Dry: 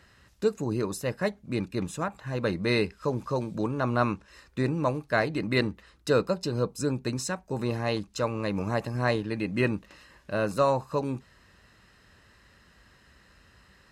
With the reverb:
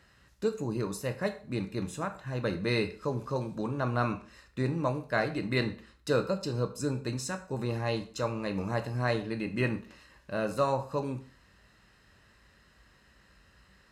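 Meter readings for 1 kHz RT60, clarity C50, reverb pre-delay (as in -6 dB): 0.40 s, 13.5 dB, 6 ms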